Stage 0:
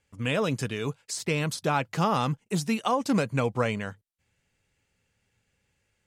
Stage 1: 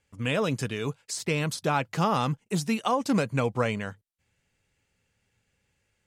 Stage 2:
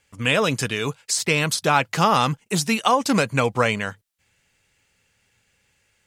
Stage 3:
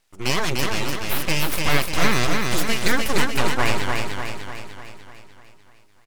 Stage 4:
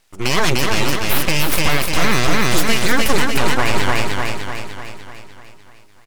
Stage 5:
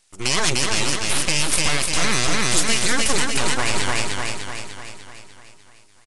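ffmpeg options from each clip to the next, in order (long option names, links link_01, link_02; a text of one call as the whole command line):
ffmpeg -i in.wav -af anull out.wav
ffmpeg -i in.wav -af "tiltshelf=frequency=740:gain=-4,volume=7dB" out.wav
ffmpeg -i in.wav -filter_complex "[0:a]aeval=exprs='abs(val(0))':channel_layout=same,asplit=2[link_01][link_02];[link_02]aecho=0:1:298|596|894|1192|1490|1788|2086|2384:0.668|0.368|0.202|0.111|0.0612|0.0336|0.0185|0.0102[link_03];[link_01][link_03]amix=inputs=2:normalize=0" out.wav
ffmpeg -i in.wav -af "alimiter=level_in=9dB:limit=-1dB:release=50:level=0:latency=1,volume=-1.5dB" out.wav
ffmpeg -i in.wav -af "aresample=22050,aresample=44100,aemphasis=mode=production:type=75kf,volume=-6.5dB" out.wav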